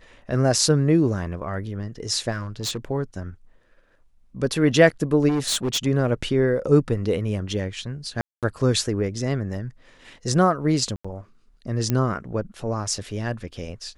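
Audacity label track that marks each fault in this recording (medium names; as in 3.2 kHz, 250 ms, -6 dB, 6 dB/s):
2.310000	2.850000	clipped -23.5 dBFS
5.280000	5.870000	clipped -19.5 dBFS
8.210000	8.430000	dropout 217 ms
10.960000	11.040000	dropout 85 ms
11.900000	11.900000	pop -10 dBFS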